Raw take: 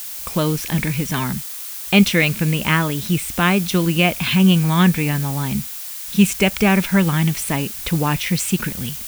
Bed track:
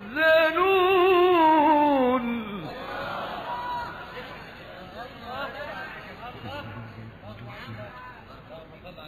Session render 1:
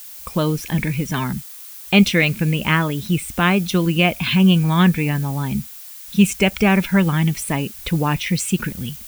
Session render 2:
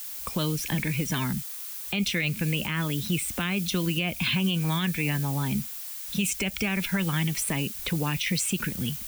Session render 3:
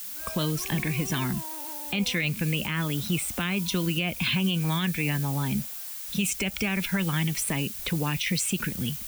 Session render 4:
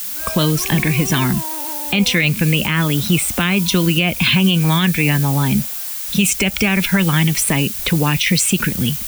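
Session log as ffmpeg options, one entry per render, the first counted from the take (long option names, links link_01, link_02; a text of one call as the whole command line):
ffmpeg -i in.wav -af "afftdn=noise_reduction=8:noise_floor=-31" out.wav
ffmpeg -i in.wav -filter_complex "[0:a]acrossover=split=110|290|2000[link_01][link_02][link_03][link_04];[link_01]acompressor=threshold=-43dB:ratio=4[link_05];[link_02]acompressor=threshold=-29dB:ratio=4[link_06];[link_03]acompressor=threshold=-34dB:ratio=4[link_07];[link_04]acompressor=threshold=-24dB:ratio=4[link_08];[link_05][link_06][link_07][link_08]amix=inputs=4:normalize=0,alimiter=limit=-16.5dB:level=0:latency=1:release=36" out.wav
ffmpeg -i in.wav -i bed.wav -filter_complex "[1:a]volume=-24.5dB[link_01];[0:a][link_01]amix=inputs=2:normalize=0" out.wav
ffmpeg -i in.wav -af "volume=11.5dB" out.wav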